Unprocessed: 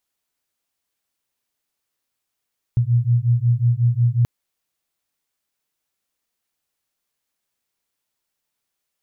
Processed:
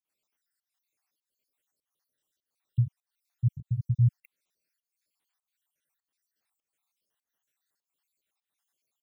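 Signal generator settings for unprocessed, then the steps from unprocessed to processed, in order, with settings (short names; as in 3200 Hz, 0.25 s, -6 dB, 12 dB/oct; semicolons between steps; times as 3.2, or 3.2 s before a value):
beating tones 117 Hz, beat 5.5 Hz, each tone -17.5 dBFS 1.48 s
random spectral dropouts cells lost 65%; low shelf 81 Hz -11.5 dB; pump 100 bpm, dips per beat 1, -19 dB, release 0.239 s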